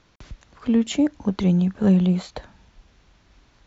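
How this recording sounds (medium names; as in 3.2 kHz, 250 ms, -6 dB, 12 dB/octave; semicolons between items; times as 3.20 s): noise floor -60 dBFS; spectral tilt -9.5 dB/octave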